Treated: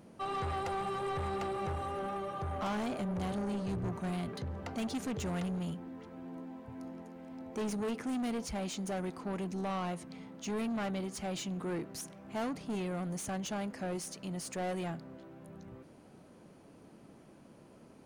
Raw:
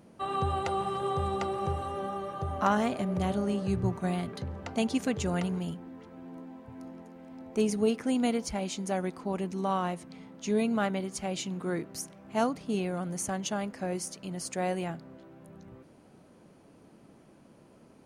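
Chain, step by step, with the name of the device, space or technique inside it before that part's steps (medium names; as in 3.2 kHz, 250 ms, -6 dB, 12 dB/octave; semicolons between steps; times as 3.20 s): saturation between pre-emphasis and de-emphasis (treble shelf 5.5 kHz +10 dB; saturation -32 dBFS, distortion -8 dB; treble shelf 5.5 kHz -10 dB)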